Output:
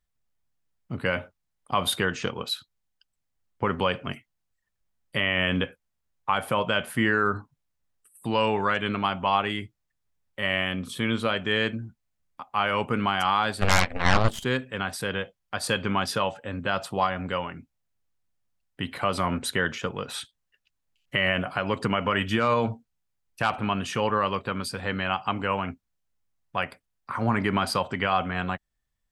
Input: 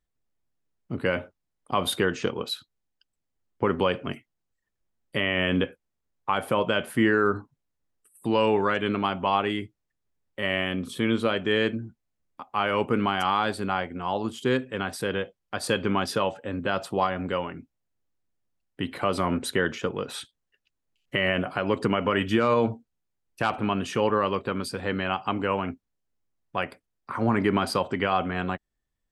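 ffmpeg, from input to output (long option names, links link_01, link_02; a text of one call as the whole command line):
ffmpeg -i in.wav -filter_complex "[0:a]asplit=3[link_01][link_02][link_03];[link_01]afade=type=out:start_time=13.61:duration=0.02[link_04];[link_02]aeval=exprs='0.282*(cos(1*acos(clip(val(0)/0.282,-1,1)))-cos(1*PI/2))+0.141*(cos(8*acos(clip(val(0)/0.282,-1,1)))-cos(8*PI/2))':channel_layout=same,afade=type=in:start_time=13.61:duration=0.02,afade=type=out:start_time=14.43:duration=0.02[link_05];[link_03]afade=type=in:start_time=14.43:duration=0.02[link_06];[link_04][link_05][link_06]amix=inputs=3:normalize=0,equalizer=frequency=350:width=1.1:gain=-8,volume=2dB" out.wav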